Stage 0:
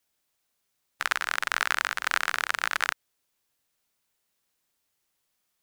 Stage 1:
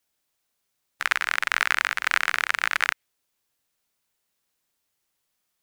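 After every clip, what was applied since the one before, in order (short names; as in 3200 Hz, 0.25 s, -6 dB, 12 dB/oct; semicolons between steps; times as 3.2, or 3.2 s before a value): dynamic EQ 2200 Hz, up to +7 dB, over -41 dBFS, Q 1.6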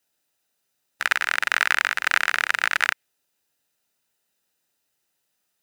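notch comb 1100 Hz; gain +3 dB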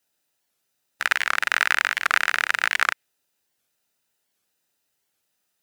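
record warp 78 rpm, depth 250 cents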